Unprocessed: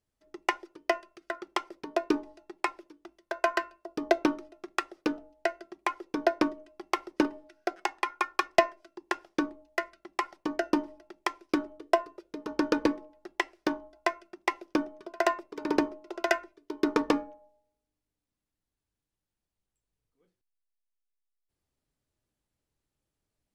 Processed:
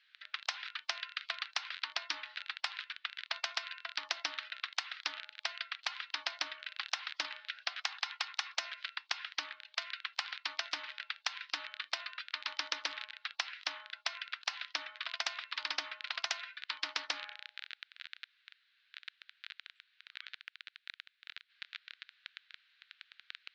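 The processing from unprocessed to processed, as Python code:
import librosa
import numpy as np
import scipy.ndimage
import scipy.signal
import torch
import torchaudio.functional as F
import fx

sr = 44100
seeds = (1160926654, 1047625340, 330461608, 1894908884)

y = fx.dmg_crackle(x, sr, seeds[0], per_s=18.0, level_db=-42.0)
y = scipy.signal.sosfilt(scipy.signal.ellip(3, 1.0, 60, [1500.0, 4000.0], 'bandpass', fs=sr, output='sos'), y)
y = fx.spectral_comp(y, sr, ratio=10.0)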